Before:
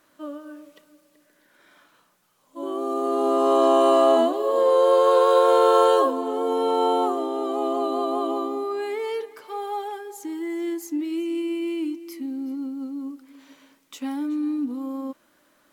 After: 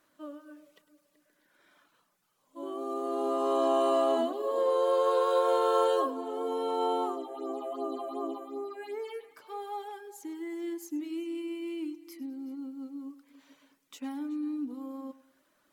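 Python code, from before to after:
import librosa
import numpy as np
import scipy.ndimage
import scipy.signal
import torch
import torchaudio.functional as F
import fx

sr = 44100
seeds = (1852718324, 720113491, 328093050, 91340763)

y = fx.dereverb_blind(x, sr, rt60_s=0.5)
y = fx.phaser_stages(y, sr, stages=6, low_hz=260.0, high_hz=3900.0, hz=2.7, feedback_pct=25, at=(7.15, 9.23), fade=0.02)
y = fx.echo_feedback(y, sr, ms=103, feedback_pct=41, wet_db=-17.0)
y = F.gain(torch.from_numpy(y), -7.5).numpy()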